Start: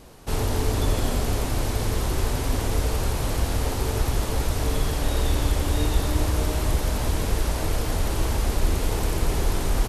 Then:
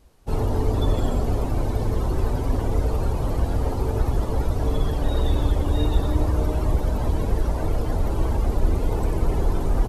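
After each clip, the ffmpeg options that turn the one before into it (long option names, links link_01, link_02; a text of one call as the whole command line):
ffmpeg -i in.wav -af "afftdn=noise_reduction=15:noise_floor=-32,volume=2dB" out.wav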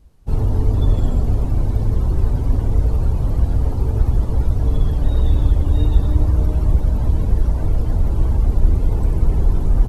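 ffmpeg -i in.wav -af "bass=frequency=250:gain=11,treble=frequency=4000:gain=0,volume=-4.5dB" out.wav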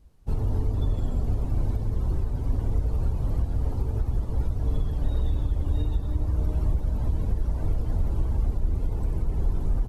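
ffmpeg -i in.wav -af "alimiter=limit=-10dB:level=0:latency=1:release=463,volume=-5.5dB" out.wav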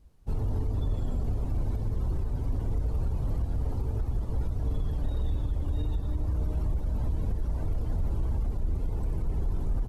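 ffmpeg -i in.wav -af "alimiter=limit=-19.5dB:level=0:latency=1:release=15,volume=-2dB" out.wav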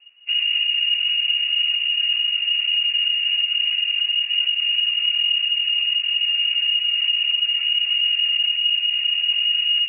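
ffmpeg -i in.wav -af "lowpass=frequency=2500:width_type=q:width=0.5098,lowpass=frequency=2500:width_type=q:width=0.6013,lowpass=frequency=2500:width_type=q:width=0.9,lowpass=frequency=2500:width_type=q:width=2.563,afreqshift=-2900,volume=6.5dB" out.wav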